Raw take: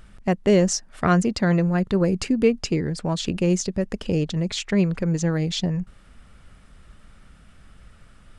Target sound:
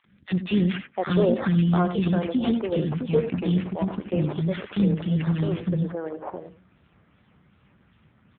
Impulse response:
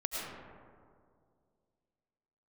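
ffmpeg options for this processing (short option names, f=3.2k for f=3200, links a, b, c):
-filter_complex "[0:a]acrusher=samples=11:mix=1:aa=0.000001:lfo=1:lforange=6.6:lforate=2.6,acrossover=split=330|1400[a][b][c];[a]adelay=40[d];[b]adelay=700[e];[d][e][c]amix=inputs=3:normalize=0,asplit=2[f][g];[1:a]atrim=start_sample=2205,atrim=end_sample=3087,adelay=87[h];[g][h]afir=irnorm=-1:irlink=0,volume=-9dB[i];[f][i]amix=inputs=2:normalize=0" -ar 8000 -c:a libopencore_amrnb -b:a 5900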